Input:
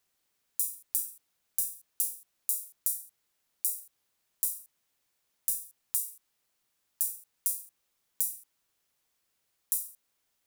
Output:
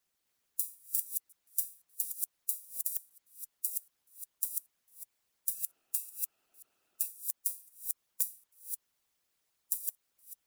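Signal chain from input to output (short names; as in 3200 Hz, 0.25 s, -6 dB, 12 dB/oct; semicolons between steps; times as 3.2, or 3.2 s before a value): reverse delay 0.265 s, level -2 dB; 5.55–7.07 small resonant body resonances 360/670/1300/2600 Hz, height 15 dB, ringing for 20 ms; harmonic-percussive split harmonic -12 dB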